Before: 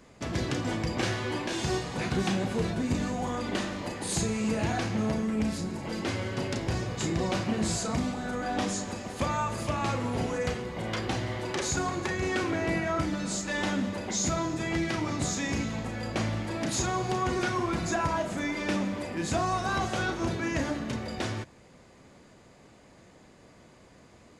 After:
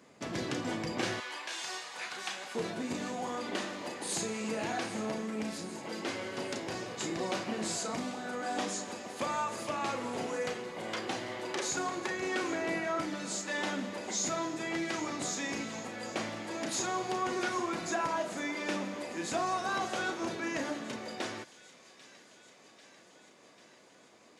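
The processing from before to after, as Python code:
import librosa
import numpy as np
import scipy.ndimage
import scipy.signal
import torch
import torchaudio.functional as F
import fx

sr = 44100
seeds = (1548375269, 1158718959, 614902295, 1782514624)

y = fx.highpass(x, sr, hz=fx.steps((0.0, 180.0), (1.2, 990.0), (2.55, 280.0)), slope=12)
y = fx.echo_wet_highpass(y, sr, ms=793, feedback_pct=70, hz=2400.0, wet_db=-15.0)
y = y * 10.0 ** (-3.0 / 20.0)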